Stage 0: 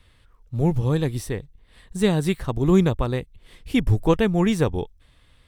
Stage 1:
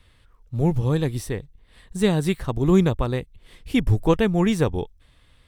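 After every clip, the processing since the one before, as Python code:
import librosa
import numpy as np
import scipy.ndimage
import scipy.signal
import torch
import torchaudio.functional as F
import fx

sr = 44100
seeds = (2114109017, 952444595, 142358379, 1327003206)

y = x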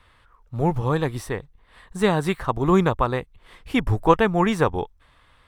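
y = fx.peak_eq(x, sr, hz=1100.0, db=13.5, octaves=1.9)
y = y * 10.0 ** (-3.5 / 20.0)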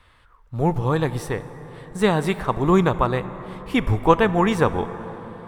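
y = fx.rev_plate(x, sr, seeds[0], rt60_s=5.0, hf_ratio=0.4, predelay_ms=0, drr_db=12.5)
y = y * 10.0 ** (1.0 / 20.0)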